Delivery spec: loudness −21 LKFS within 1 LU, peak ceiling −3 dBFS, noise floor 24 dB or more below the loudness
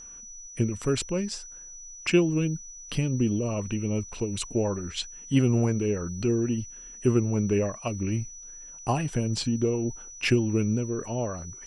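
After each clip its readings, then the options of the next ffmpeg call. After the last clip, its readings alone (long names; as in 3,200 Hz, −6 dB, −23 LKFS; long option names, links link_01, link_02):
interfering tone 5,900 Hz; level of the tone −42 dBFS; integrated loudness −27.5 LKFS; sample peak −10.5 dBFS; target loudness −21.0 LKFS
→ -af "bandreject=frequency=5900:width=30"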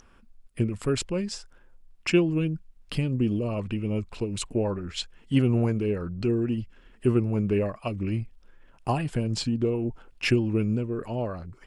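interfering tone none found; integrated loudness −27.5 LKFS; sample peak −10.5 dBFS; target loudness −21.0 LKFS
→ -af "volume=6.5dB"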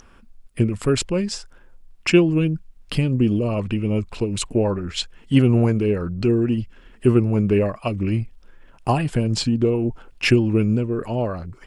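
integrated loudness −21.0 LKFS; sample peak −4.0 dBFS; background noise floor −50 dBFS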